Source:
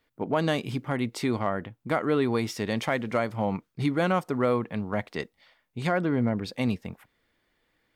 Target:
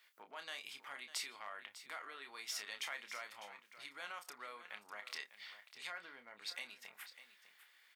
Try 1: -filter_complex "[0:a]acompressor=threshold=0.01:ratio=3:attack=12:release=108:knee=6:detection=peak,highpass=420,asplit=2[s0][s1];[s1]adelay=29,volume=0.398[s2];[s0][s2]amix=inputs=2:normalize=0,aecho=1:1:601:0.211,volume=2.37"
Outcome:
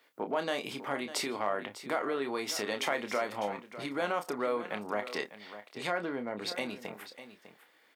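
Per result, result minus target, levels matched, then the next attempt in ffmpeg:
500 Hz band +12.0 dB; compression: peak gain reduction -7.5 dB
-filter_complex "[0:a]acompressor=threshold=0.01:ratio=3:attack=12:release=108:knee=6:detection=peak,highpass=1600,asplit=2[s0][s1];[s1]adelay=29,volume=0.398[s2];[s0][s2]amix=inputs=2:normalize=0,aecho=1:1:601:0.211,volume=2.37"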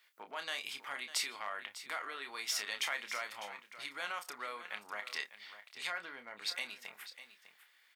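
compression: peak gain reduction -7.5 dB
-filter_complex "[0:a]acompressor=threshold=0.00282:ratio=3:attack=12:release=108:knee=6:detection=peak,highpass=1600,asplit=2[s0][s1];[s1]adelay=29,volume=0.398[s2];[s0][s2]amix=inputs=2:normalize=0,aecho=1:1:601:0.211,volume=2.37"

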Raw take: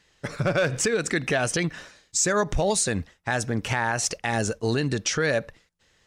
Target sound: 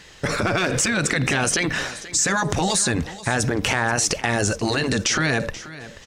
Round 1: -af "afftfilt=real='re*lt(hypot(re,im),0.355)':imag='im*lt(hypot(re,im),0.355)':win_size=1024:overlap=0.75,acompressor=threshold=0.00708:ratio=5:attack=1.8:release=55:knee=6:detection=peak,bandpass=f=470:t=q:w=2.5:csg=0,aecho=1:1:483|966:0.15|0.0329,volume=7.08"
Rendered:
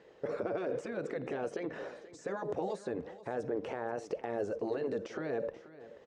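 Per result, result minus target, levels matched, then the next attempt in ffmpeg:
500 Hz band +8.5 dB; compression: peak gain reduction +6 dB
-af "afftfilt=real='re*lt(hypot(re,im),0.355)':imag='im*lt(hypot(re,im),0.355)':win_size=1024:overlap=0.75,acompressor=threshold=0.00708:ratio=5:attack=1.8:release=55:knee=6:detection=peak,aecho=1:1:483|966:0.15|0.0329,volume=7.08"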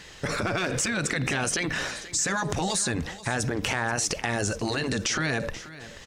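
compression: peak gain reduction +6 dB
-af "afftfilt=real='re*lt(hypot(re,im),0.355)':imag='im*lt(hypot(re,im),0.355)':win_size=1024:overlap=0.75,acompressor=threshold=0.0168:ratio=5:attack=1.8:release=55:knee=6:detection=peak,aecho=1:1:483|966:0.15|0.0329,volume=7.08"

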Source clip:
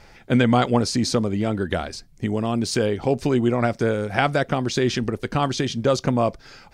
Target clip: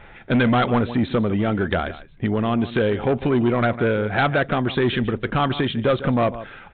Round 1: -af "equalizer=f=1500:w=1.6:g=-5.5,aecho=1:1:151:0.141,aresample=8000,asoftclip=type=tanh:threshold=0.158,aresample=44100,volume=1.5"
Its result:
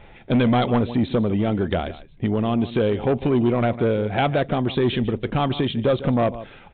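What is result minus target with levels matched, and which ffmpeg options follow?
2 kHz band -6.0 dB
-af "equalizer=f=1500:w=1.6:g=4,aecho=1:1:151:0.141,aresample=8000,asoftclip=type=tanh:threshold=0.158,aresample=44100,volume=1.5"

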